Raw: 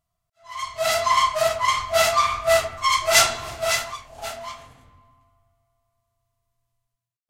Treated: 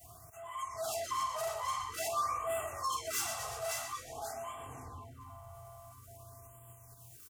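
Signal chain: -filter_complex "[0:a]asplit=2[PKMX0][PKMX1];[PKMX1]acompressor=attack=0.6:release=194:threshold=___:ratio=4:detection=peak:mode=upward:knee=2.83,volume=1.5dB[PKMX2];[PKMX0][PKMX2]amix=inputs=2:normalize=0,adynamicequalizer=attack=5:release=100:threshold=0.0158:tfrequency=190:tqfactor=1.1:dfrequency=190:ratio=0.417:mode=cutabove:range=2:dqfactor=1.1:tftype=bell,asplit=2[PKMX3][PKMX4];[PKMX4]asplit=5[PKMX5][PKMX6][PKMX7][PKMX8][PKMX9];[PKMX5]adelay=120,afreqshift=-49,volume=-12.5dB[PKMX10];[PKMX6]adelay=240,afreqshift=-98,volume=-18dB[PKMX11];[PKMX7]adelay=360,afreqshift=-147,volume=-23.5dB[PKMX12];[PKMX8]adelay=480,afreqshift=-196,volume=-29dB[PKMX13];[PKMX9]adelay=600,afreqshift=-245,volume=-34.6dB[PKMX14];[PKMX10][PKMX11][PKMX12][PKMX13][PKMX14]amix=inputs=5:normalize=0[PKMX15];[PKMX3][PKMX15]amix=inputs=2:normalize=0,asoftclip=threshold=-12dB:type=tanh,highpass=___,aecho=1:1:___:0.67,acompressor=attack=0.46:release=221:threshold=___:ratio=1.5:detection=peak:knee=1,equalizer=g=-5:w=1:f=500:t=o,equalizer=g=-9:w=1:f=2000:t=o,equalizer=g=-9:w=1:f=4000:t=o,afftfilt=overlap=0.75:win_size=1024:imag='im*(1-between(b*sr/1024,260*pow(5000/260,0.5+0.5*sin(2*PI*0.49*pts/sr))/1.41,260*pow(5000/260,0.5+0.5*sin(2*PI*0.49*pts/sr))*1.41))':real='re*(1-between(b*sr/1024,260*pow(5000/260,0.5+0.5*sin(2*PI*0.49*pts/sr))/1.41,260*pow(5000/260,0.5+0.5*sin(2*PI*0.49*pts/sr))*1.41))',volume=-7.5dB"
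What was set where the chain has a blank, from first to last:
-26dB, 110, 2.6, -32dB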